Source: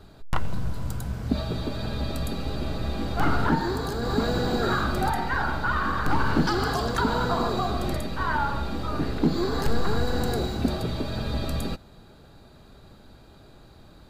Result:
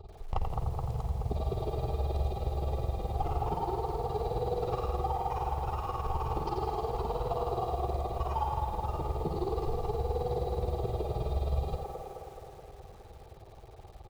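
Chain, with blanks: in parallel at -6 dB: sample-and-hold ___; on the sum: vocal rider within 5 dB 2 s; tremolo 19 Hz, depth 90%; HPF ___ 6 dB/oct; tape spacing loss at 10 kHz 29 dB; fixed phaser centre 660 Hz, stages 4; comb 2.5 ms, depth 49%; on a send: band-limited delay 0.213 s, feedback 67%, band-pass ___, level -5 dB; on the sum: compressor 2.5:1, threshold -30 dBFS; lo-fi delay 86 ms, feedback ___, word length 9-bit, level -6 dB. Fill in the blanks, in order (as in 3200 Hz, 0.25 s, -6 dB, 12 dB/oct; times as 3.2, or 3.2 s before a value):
11×, 44 Hz, 760 Hz, 55%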